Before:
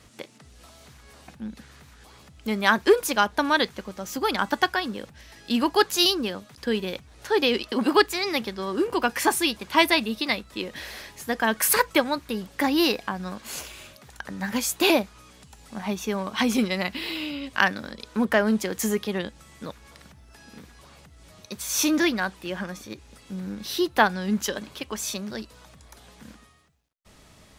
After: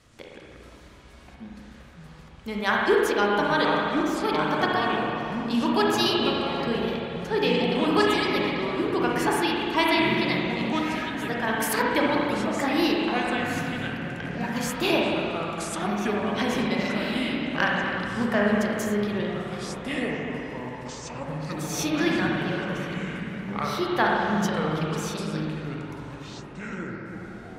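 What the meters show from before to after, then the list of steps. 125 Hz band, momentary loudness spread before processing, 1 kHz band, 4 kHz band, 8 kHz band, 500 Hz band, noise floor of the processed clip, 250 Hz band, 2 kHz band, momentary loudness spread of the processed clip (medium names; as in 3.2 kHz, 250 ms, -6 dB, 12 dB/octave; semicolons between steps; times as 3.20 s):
+7.0 dB, 18 LU, +1.0 dB, -2.5 dB, -7.0 dB, +1.0 dB, -46 dBFS, +1.5 dB, 0.0 dB, 13 LU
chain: treble shelf 12 kHz -9.5 dB; spring tank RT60 2.4 s, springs 34/58 ms, chirp 35 ms, DRR -3 dB; ever faster or slower copies 90 ms, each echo -5 st, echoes 3, each echo -6 dB; trim -5.5 dB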